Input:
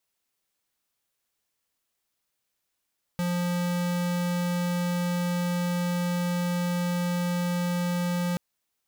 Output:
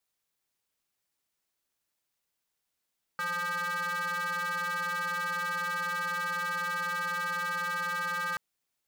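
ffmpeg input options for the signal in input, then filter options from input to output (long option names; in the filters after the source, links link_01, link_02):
-f lavfi -i "aevalsrc='0.0447*(2*lt(mod(176*t,1),0.5)-1)':duration=5.18:sample_rate=44100"
-af "aeval=exprs='val(0)*sin(2*PI*1400*n/s)':channel_layout=same,asoftclip=type=tanh:threshold=-28.5dB"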